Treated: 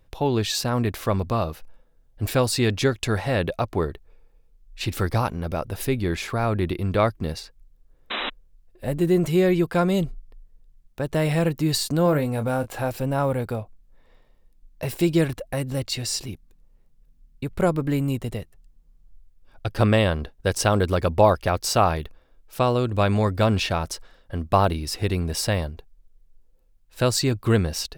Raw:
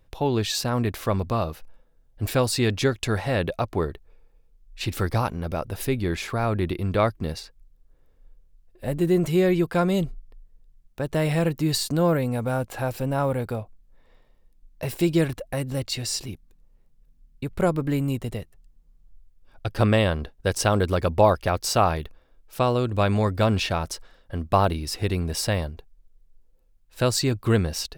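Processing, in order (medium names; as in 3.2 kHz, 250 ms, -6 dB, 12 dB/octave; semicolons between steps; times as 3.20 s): 8.10–8.30 s: painted sound noise 210–4000 Hz -29 dBFS; 12.03–12.91 s: doubling 27 ms -10.5 dB; trim +1 dB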